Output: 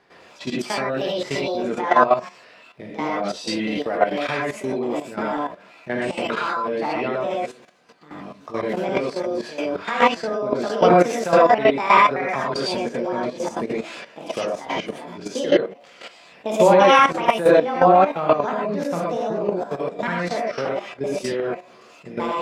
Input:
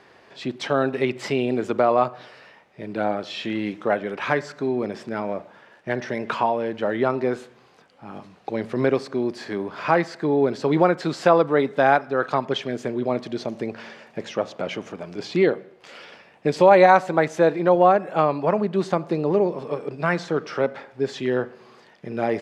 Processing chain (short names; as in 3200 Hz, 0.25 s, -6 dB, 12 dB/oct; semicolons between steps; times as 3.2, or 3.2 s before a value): trilling pitch shifter +6.5 st, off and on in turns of 0.193 s; non-linear reverb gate 0.14 s rising, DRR -6.5 dB; level quantiser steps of 12 dB